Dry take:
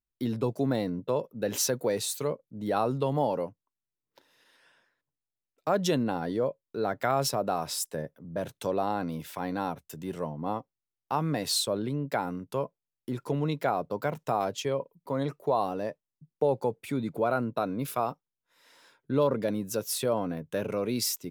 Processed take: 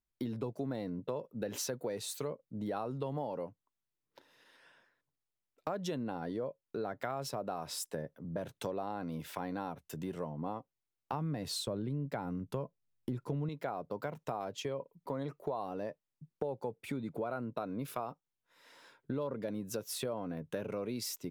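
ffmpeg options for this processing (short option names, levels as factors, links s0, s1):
-filter_complex "[0:a]asettb=1/sr,asplit=3[s0][s1][s2];[s0]atrim=end=11.134[s3];[s1]atrim=start=11.13:end=13.49,asetpts=PTS-STARTPTS,afade=t=in:d=0.004:c=qsin,afade=t=out:st=2.356:d=0.004:c=qsin,lowshelf=f=210:g=12[s4];[s2]atrim=start=13.486[s5];[s3][s4]acrossfade=d=0.004:c1=hsin:c2=qsin[s6];[s6][s5]acrossfade=d=0.004:c1=qsin:c2=hsin,highshelf=f=4100:g=-6,acompressor=threshold=0.0141:ratio=4,volume=1.12"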